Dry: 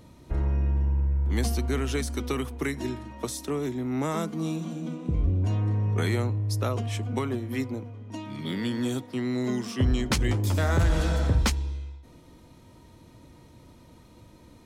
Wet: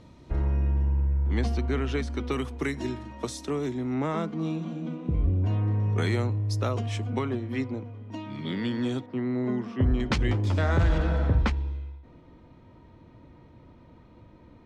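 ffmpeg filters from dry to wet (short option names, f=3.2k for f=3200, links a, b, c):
-af "asetnsamples=n=441:p=0,asendcmd='1.15 lowpass f 3400;2.32 lowpass f 6900;3.94 lowpass f 3300;5.8 lowpass f 6800;7.1 lowpass f 4100;9.06 lowpass f 1700;10 lowpass f 3800;10.98 lowpass f 2300',lowpass=5.6k"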